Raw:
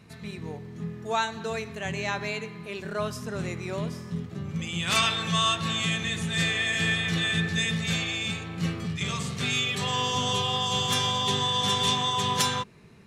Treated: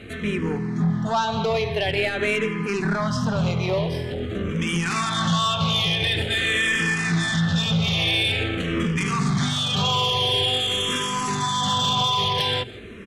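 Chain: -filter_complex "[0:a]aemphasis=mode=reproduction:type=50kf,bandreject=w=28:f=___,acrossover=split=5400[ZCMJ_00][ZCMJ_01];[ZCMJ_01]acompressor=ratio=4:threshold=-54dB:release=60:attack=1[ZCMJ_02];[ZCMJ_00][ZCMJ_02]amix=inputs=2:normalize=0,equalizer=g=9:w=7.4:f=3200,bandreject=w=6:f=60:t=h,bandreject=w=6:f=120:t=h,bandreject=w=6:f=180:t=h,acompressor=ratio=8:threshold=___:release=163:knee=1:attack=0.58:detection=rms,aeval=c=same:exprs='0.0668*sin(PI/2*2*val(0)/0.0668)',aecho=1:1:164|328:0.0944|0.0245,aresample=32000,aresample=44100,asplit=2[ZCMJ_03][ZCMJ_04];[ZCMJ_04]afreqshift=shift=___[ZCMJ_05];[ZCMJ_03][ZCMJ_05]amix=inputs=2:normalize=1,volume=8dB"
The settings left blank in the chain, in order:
7100, -28dB, -0.47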